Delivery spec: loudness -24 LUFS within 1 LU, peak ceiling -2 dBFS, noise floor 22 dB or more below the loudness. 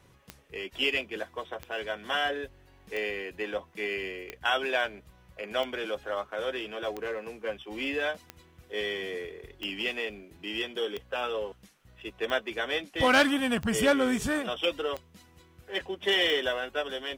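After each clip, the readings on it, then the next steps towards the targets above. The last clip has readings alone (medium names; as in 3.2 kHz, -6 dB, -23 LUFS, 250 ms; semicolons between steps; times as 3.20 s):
clicks found 13; loudness -30.5 LUFS; peak level -12.0 dBFS; loudness target -24.0 LUFS
-> de-click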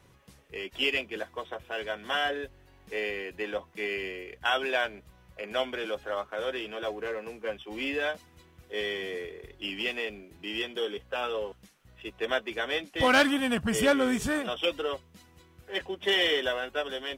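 clicks found 0; loudness -30.5 LUFS; peak level -12.0 dBFS; loudness target -24.0 LUFS
-> trim +6.5 dB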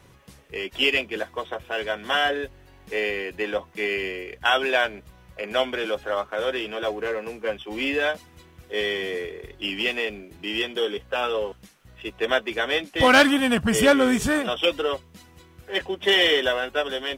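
loudness -24.0 LUFS; peak level -5.5 dBFS; noise floor -52 dBFS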